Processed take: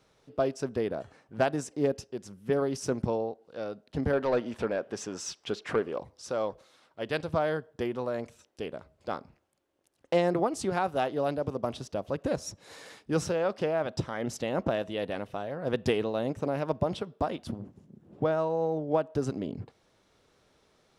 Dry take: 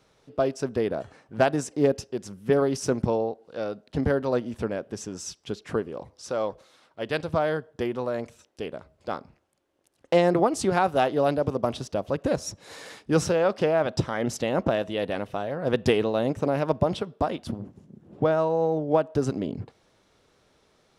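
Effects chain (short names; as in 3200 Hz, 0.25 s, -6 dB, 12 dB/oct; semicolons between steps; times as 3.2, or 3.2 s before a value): 4.13–5.99 overdrive pedal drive 15 dB, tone 2900 Hz, clips at -12.5 dBFS; vocal rider within 3 dB 2 s; gain -5.5 dB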